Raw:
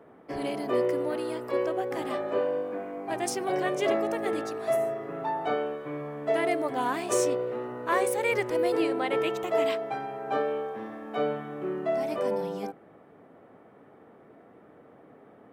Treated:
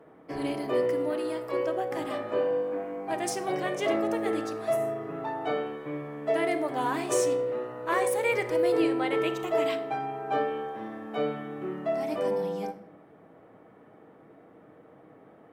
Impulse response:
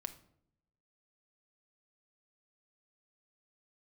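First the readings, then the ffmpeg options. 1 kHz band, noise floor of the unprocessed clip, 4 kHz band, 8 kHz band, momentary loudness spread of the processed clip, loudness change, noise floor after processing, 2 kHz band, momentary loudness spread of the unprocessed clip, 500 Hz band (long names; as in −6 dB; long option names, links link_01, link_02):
−0.5 dB, −55 dBFS, 0.0 dB, −0.5 dB, 9 LU, 0.0 dB, −55 dBFS, −0.5 dB, 8 LU, 0.0 dB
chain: -filter_complex "[1:a]atrim=start_sample=2205,asetrate=38367,aresample=44100[link_01];[0:a][link_01]afir=irnorm=-1:irlink=0,volume=1.5dB"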